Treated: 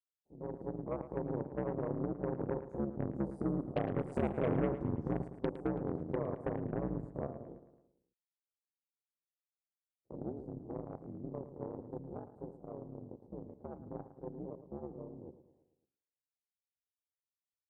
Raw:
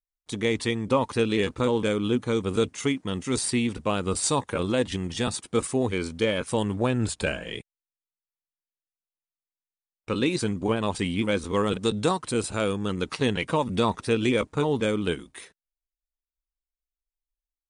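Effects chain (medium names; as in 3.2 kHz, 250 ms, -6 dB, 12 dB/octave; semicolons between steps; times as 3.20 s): spectrogram pixelated in time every 50 ms; Doppler pass-by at 4.48 s, 9 m/s, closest 1.5 m; one-sided clip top -27.5 dBFS; ring modulator 68 Hz; elliptic low-pass 790 Hz, stop band 40 dB; compression 4:1, threshold -51 dBFS, peak gain reduction 19 dB; Chebyshev shaper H 8 -19 dB, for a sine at -37.5 dBFS; on a send: feedback delay 110 ms, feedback 52%, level -12.5 dB; on the sum: level rider gain up to 7 dB; high-pass 52 Hz; trim +11 dB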